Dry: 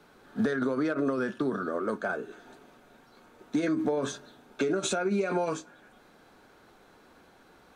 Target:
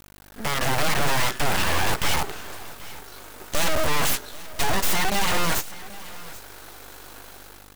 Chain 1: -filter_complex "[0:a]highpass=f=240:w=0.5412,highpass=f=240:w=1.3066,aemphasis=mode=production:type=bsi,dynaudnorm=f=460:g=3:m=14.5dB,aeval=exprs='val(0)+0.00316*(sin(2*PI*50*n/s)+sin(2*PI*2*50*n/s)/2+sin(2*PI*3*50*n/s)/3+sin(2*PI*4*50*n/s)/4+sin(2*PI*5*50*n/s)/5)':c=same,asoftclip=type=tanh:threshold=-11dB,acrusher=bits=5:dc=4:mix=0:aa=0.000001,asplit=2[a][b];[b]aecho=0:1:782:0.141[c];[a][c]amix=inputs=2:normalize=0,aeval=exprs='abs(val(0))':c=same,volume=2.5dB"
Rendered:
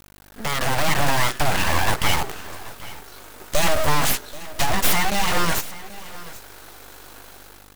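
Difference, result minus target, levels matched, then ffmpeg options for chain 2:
soft clip: distortion -8 dB
-filter_complex "[0:a]highpass=f=240:w=0.5412,highpass=f=240:w=1.3066,aemphasis=mode=production:type=bsi,dynaudnorm=f=460:g=3:m=14.5dB,aeval=exprs='val(0)+0.00316*(sin(2*PI*50*n/s)+sin(2*PI*2*50*n/s)/2+sin(2*PI*3*50*n/s)/3+sin(2*PI*4*50*n/s)/4+sin(2*PI*5*50*n/s)/5)':c=same,asoftclip=type=tanh:threshold=-19dB,acrusher=bits=5:dc=4:mix=0:aa=0.000001,asplit=2[a][b];[b]aecho=0:1:782:0.141[c];[a][c]amix=inputs=2:normalize=0,aeval=exprs='abs(val(0))':c=same,volume=2.5dB"

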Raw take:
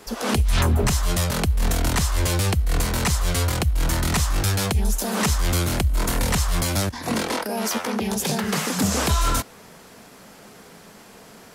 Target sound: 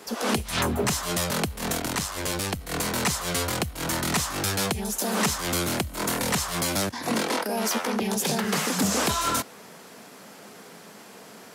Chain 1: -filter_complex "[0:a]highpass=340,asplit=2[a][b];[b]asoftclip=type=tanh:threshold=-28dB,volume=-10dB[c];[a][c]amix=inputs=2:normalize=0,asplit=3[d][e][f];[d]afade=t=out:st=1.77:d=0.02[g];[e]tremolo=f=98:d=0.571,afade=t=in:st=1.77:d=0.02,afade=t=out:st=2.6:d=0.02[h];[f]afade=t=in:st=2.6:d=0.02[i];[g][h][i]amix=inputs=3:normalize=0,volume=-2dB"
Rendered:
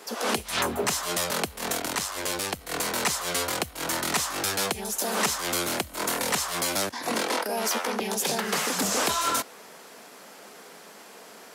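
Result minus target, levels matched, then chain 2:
125 Hz band -9.0 dB
-filter_complex "[0:a]highpass=170,asplit=2[a][b];[b]asoftclip=type=tanh:threshold=-28dB,volume=-10dB[c];[a][c]amix=inputs=2:normalize=0,asplit=3[d][e][f];[d]afade=t=out:st=1.77:d=0.02[g];[e]tremolo=f=98:d=0.571,afade=t=in:st=1.77:d=0.02,afade=t=out:st=2.6:d=0.02[h];[f]afade=t=in:st=2.6:d=0.02[i];[g][h][i]amix=inputs=3:normalize=0,volume=-2dB"

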